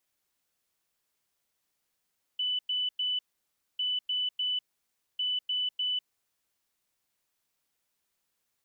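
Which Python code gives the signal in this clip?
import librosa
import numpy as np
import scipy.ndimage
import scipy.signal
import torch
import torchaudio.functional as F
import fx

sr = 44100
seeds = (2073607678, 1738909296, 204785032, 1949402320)

y = fx.beep_pattern(sr, wave='sine', hz=2990.0, on_s=0.2, off_s=0.1, beeps=3, pause_s=0.6, groups=3, level_db=-27.0)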